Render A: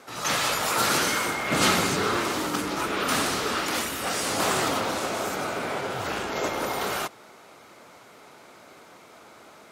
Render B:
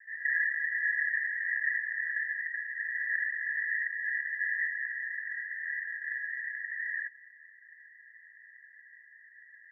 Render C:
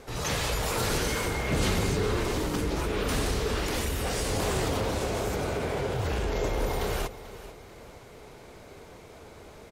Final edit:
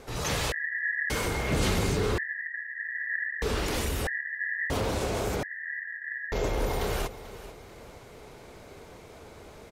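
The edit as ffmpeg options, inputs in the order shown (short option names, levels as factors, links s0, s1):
-filter_complex "[1:a]asplit=4[s0][s1][s2][s3];[2:a]asplit=5[s4][s5][s6][s7][s8];[s4]atrim=end=0.522[s9];[s0]atrim=start=0.518:end=1.102[s10];[s5]atrim=start=1.098:end=2.182[s11];[s1]atrim=start=2.178:end=3.422[s12];[s6]atrim=start=3.418:end=4.072[s13];[s2]atrim=start=4.068:end=4.702[s14];[s7]atrim=start=4.698:end=5.432[s15];[s3]atrim=start=5.428:end=6.322[s16];[s8]atrim=start=6.318[s17];[s9][s10]acrossfade=d=0.004:c1=hsin:c2=hsin[s18];[s18][s11]acrossfade=d=0.004:c1=hsin:c2=hsin[s19];[s19][s12]acrossfade=d=0.004:c1=hsin:c2=hsin[s20];[s20][s13]acrossfade=d=0.004:c1=hsin:c2=hsin[s21];[s21][s14]acrossfade=d=0.004:c1=hsin:c2=hsin[s22];[s22][s15]acrossfade=d=0.004:c1=hsin:c2=hsin[s23];[s23][s16]acrossfade=d=0.004:c1=hsin:c2=hsin[s24];[s24][s17]acrossfade=d=0.004:c1=hsin:c2=hsin"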